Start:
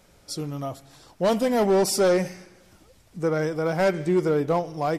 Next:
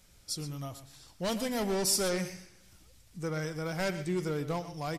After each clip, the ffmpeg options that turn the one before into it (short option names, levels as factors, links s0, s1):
-af "equalizer=f=540:w=0.33:g=-13,aecho=1:1:121:0.224"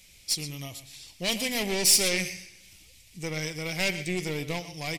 -af "aeval=exprs='0.158*(cos(1*acos(clip(val(0)/0.158,-1,1)))-cos(1*PI/2))+0.0126*(cos(6*acos(clip(val(0)/0.158,-1,1)))-cos(6*PI/2))':c=same,highshelf=f=1800:t=q:w=3:g=8"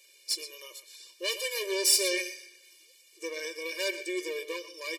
-af "afftfilt=real='re*eq(mod(floor(b*sr/1024/310),2),1)':imag='im*eq(mod(floor(b*sr/1024/310),2),1)':win_size=1024:overlap=0.75"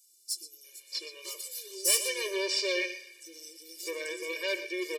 -filter_complex "[0:a]acrossover=split=270|5300[s0][s1][s2];[s0]adelay=40[s3];[s1]adelay=640[s4];[s3][s4][s2]amix=inputs=3:normalize=0,asoftclip=type=tanh:threshold=0.168,volume=1.12"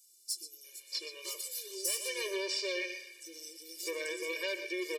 -af "acompressor=threshold=0.0251:ratio=5"